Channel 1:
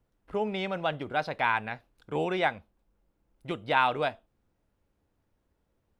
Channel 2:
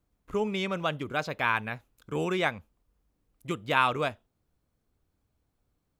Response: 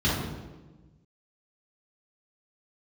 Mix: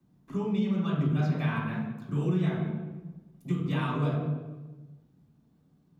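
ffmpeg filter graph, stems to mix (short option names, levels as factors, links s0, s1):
-filter_complex "[0:a]volume=0.168,asplit=2[s0][s1];[s1]volume=0.133[s2];[1:a]lowshelf=f=110:t=q:w=3:g=-13.5,acompressor=threshold=0.00316:ratio=1.5,aphaser=in_gain=1:out_gain=1:delay=4.6:decay=0.25:speed=1:type=sinusoidal,volume=-1,volume=0.794,asplit=2[s3][s4];[s4]volume=0.376[s5];[2:a]atrim=start_sample=2205[s6];[s2][s5]amix=inputs=2:normalize=0[s7];[s7][s6]afir=irnorm=-1:irlink=0[s8];[s0][s3][s8]amix=inputs=3:normalize=0,acrossover=split=140[s9][s10];[s10]acompressor=threshold=0.0501:ratio=6[s11];[s9][s11]amix=inputs=2:normalize=0"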